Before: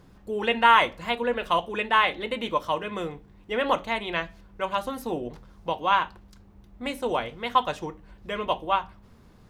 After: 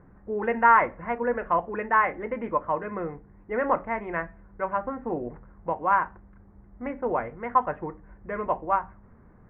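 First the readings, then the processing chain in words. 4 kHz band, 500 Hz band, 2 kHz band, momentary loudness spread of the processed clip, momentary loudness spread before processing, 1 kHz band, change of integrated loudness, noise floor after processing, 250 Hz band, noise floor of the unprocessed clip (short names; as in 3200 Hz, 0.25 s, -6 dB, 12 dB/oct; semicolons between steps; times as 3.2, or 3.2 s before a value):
under -25 dB, 0.0 dB, -2.0 dB, 15 LU, 15 LU, 0.0 dB, -0.5 dB, -54 dBFS, 0.0 dB, -54 dBFS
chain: steep low-pass 2000 Hz 48 dB/oct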